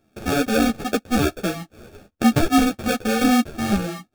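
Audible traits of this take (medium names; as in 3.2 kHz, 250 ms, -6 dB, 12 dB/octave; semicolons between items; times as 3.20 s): aliases and images of a low sample rate 1 kHz, jitter 0%; a shimmering, thickened sound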